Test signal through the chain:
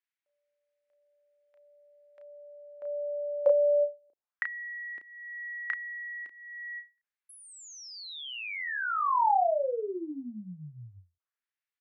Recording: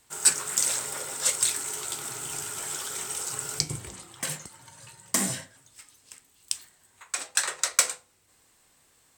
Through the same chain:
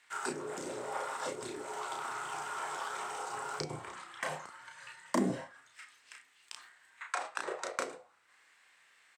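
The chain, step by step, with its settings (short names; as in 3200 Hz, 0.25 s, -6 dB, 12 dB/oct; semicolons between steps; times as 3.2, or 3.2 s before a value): auto-wah 330–2000 Hz, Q 2, down, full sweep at -23 dBFS; doubler 33 ms -4.5 dB; ending taper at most 240 dB/s; gain +7 dB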